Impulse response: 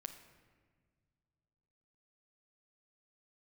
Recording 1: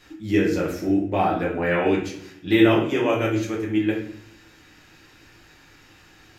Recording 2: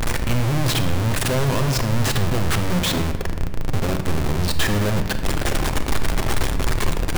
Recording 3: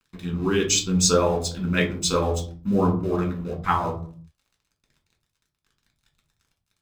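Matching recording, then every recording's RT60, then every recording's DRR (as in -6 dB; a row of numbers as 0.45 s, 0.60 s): 2; 0.65 s, no single decay rate, 0.45 s; -5.0 dB, 6.5 dB, 0.5 dB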